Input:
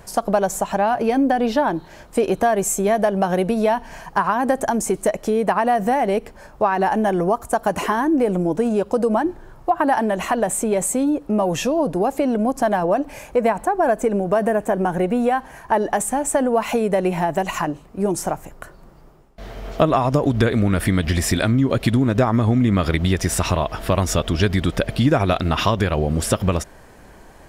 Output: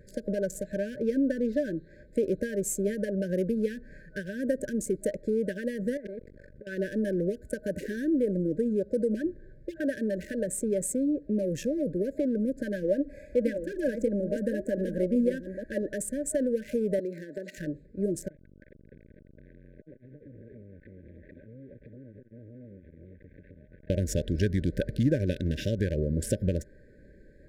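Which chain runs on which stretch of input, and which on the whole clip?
5.97–6.67 notches 60/120/180 Hz + negative-ratio compressor -24 dBFS, ratio -0.5 + core saturation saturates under 1600 Hz
12.76–15.83 reverse delay 0.48 s, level -8.5 dB + comb 3.6 ms, depth 48%
16.99–17.58 HPF 220 Hz 24 dB/oct + bell 4300 Hz +8 dB 0.54 oct + compressor 2.5:1, threshold -23 dBFS
18.28–23.9 delta modulation 16 kbps, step -28 dBFS + compressor 16:1, threshold -31 dBFS + core saturation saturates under 750 Hz
whole clip: Wiener smoothing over 15 samples; FFT band-reject 620–1500 Hz; dynamic EQ 2700 Hz, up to -7 dB, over -43 dBFS, Q 0.89; gain -7.5 dB

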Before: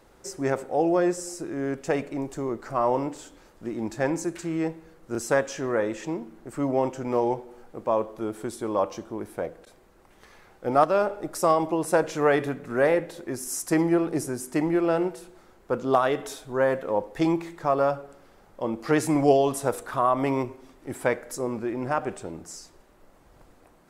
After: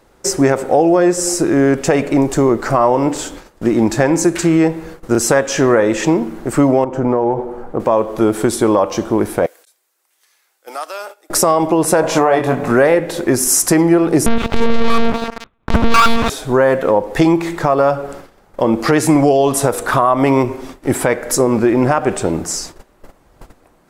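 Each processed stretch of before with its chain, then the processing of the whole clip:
6.84–7.8 EQ curve 1100 Hz 0 dB, 2400 Hz -11 dB, 5300 Hz -16 dB + compressor 5:1, threshold -30 dBFS
9.46–11.3 HPF 270 Hz 24 dB/oct + differentiator + compressor 2:1, threshold -46 dBFS
12.01–12.71 band shelf 810 Hz +9 dB 1.1 oct + doubler 23 ms -6 dB
14.26–16.3 minimum comb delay 0.81 ms + monotone LPC vocoder at 8 kHz 230 Hz + sample leveller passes 5
whole clip: gate -51 dBFS, range -15 dB; compressor 6:1, threshold -28 dBFS; maximiser +20.5 dB; gain -1 dB

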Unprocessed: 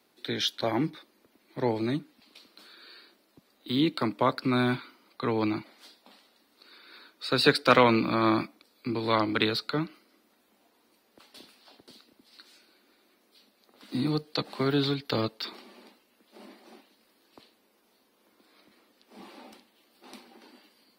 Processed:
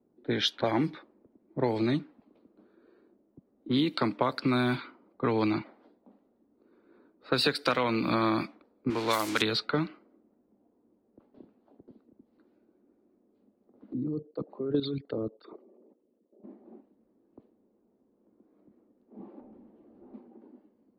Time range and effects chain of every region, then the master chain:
8.9–9.42 switching spikes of -21 dBFS + low shelf 330 Hz -10 dB
13.93–16.44 formant sharpening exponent 2 + level quantiser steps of 12 dB
19.4–20.14 high shelf 3500 Hz -7 dB + compressor 8:1, threshold -58 dBFS + sample leveller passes 3
whole clip: low-pass opened by the level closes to 350 Hz, open at -22 dBFS; compressor 12:1, threshold -27 dBFS; gain +4.5 dB

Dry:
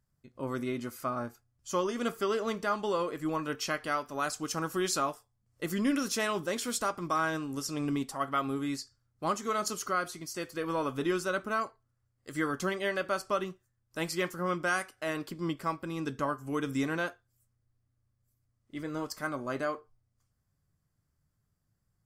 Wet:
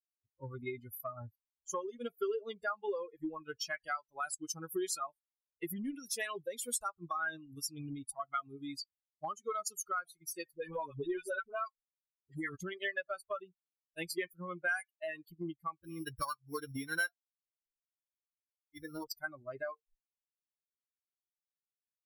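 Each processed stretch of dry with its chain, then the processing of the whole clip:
10.55–12.56 comb 7.4 ms, depth 43% + dispersion highs, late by 48 ms, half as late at 690 Hz
15.84–19.04 sample sorter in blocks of 8 samples + bell 1400 Hz +7 dB 1.4 oct
whole clip: per-bin expansion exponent 3; compressor 5:1, threshold -49 dBFS; fifteen-band EQ 160 Hz -4 dB, 400 Hz +6 dB, 1600 Hz +8 dB, 10000 Hz +10 dB; gain +9 dB

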